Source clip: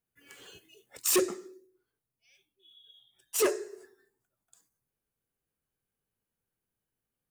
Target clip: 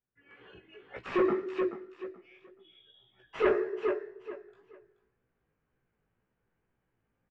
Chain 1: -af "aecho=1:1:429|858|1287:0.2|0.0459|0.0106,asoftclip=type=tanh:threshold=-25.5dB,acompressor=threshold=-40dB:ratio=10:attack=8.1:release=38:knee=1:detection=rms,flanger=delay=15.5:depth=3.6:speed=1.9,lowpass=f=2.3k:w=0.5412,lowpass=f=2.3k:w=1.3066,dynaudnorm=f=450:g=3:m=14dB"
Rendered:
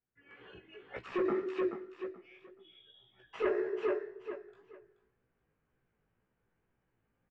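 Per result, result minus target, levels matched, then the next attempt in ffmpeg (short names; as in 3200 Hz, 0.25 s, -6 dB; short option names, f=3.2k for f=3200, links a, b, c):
compressor: peak gain reduction +12.5 dB; soft clip: distortion -7 dB
-af "aecho=1:1:429|858|1287:0.2|0.0459|0.0106,asoftclip=type=tanh:threshold=-25.5dB,flanger=delay=15.5:depth=3.6:speed=1.9,lowpass=f=2.3k:w=0.5412,lowpass=f=2.3k:w=1.3066,dynaudnorm=f=450:g=3:m=14dB"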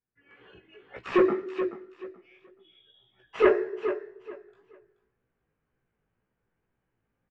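soft clip: distortion -7 dB
-af "aecho=1:1:429|858|1287:0.2|0.0459|0.0106,asoftclip=type=tanh:threshold=-33dB,flanger=delay=15.5:depth=3.6:speed=1.9,lowpass=f=2.3k:w=0.5412,lowpass=f=2.3k:w=1.3066,dynaudnorm=f=450:g=3:m=14dB"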